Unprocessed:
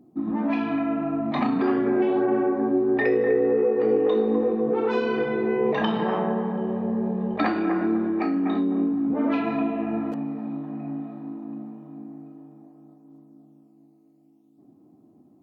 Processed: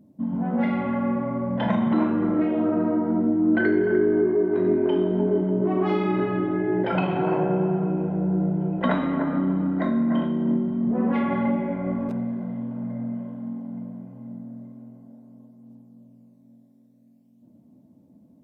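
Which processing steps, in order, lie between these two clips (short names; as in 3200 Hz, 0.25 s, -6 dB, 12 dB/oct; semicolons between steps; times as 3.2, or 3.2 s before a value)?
wide varispeed 0.837×; spring tank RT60 1.9 s, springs 48/56 ms, chirp 45 ms, DRR 8.5 dB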